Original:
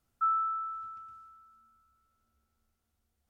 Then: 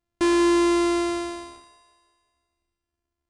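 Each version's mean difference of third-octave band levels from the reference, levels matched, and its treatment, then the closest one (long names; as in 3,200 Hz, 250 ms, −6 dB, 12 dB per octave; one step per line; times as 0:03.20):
17.0 dB: samples sorted by size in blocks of 128 samples
leveller curve on the samples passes 5
on a send: echo with a time of its own for lows and highs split 360 Hz, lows 117 ms, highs 181 ms, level −13 dB
on the sum: downsampling to 22,050 Hz
level +4.5 dB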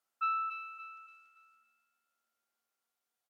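2.5 dB: stylus tracing distortion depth 0.075 ms
high-pass filter 610 Hz 12 dB per octave
repeating echo 284 ms, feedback 37%, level −4.5 dB
level −4 dB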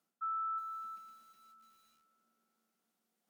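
3.5 dB: Chebyshev high-pass filter 180 Hz, order 4
dynamic equaliser 980 Hz, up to +7 dB, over −44 dBFS, Q 1.3
reversed playback
downward compressor 10 to 1, threshold −37 dBFS, peak gain reduction 15.5 dB
reversed playback
feedback echo at a low word length 369 ms, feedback 35%, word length 11 bits, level −5 dB
level +1 dB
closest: second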